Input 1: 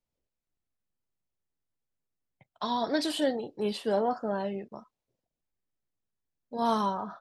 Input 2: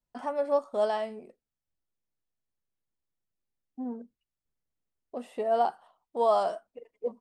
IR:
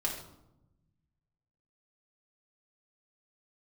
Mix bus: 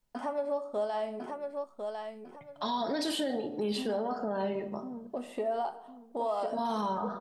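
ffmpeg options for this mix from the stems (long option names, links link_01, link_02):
-filter_complex "[0:a]alimiter=limit=-22.5dB:level=0:latency=1:release=22,volume=1.5dB,asplit=2[link_01][link_02];[link_02]volume=-7dB[link_03];[1:a]acompressor=threshold=-42dB:ratio=2,volume=2.5dB,asplit=3[link_04][link_05][link_06];[link_05]volume=-9.5dB[link_07];[link_06]volume=-3dB[link_08];[2:a]atrim=start_sample=2205[link_09];[link_03][link_07]amix=inputs=2:normalize=0[link_10];[link_10][link_09]afir=irnorm=-1:irlink=0[link_11];[link_08]aecho=0:1:1051|2102|3153|4204:1|0.27|0.0729|0.0197[link_12];[link_01][link_04][link_11][link_12]amix=inputs=4:normalize=0,alimiter=limit=-23.5dB:level=0:latency=1:release=194"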